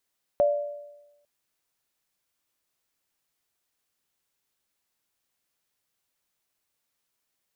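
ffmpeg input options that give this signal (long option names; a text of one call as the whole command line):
ffmpeg -f lavfi -i "aevalsrc='0.158*pow(10,-3*t/1.03)*sin(2*PI*583*t)+0.0447*pow(10,-3*t/0.86)*sin(2*PI*693*t)':duration=0.85:sample_rate=44100" out.wav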